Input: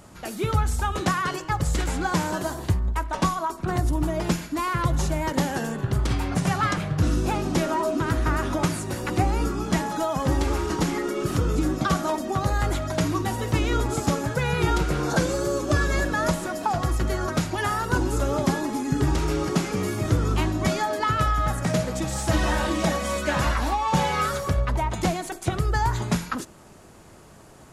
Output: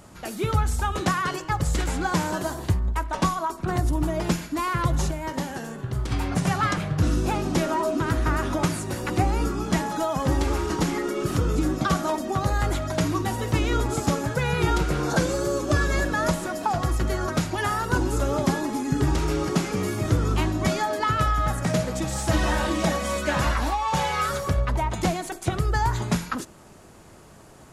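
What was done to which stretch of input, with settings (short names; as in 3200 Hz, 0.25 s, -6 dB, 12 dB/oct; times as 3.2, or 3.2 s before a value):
5.11–6.12 resonator 63 Hz, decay 0.5 s
23.7–24.29 bell 240 Hz -8.5 dB 1.5 oct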